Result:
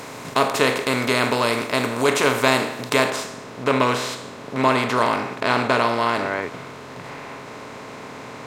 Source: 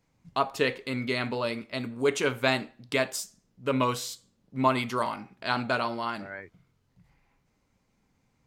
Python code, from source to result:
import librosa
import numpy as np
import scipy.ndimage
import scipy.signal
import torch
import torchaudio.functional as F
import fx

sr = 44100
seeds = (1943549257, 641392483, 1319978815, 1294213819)

y = fx.bin_compress(x, sr, power=0.4)
y = fx.high_shelf(y, sr, hz=6900.0, db=fx.steps((0.0, 5.0), (3.1, -9.0)))
y = y * 10.0 ** (2.5 / 20.0)